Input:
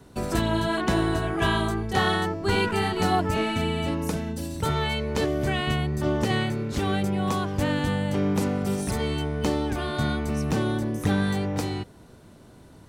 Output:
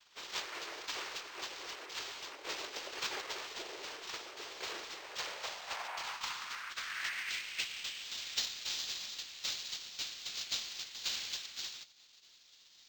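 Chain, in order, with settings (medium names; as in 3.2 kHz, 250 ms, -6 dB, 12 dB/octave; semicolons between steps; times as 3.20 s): spectral gate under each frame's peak -30 dB weak; noise-vocoded speech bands 4; high-pass sweep 390 Hz -> 3.9 kHz, 4.91–8.22 s; decimation joined by straight lines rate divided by 4×; trim +7.5 dB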